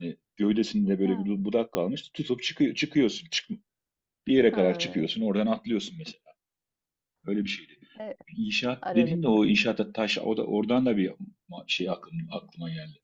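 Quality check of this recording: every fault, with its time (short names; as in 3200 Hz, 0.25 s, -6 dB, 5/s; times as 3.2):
1.75 pop -11 dBFS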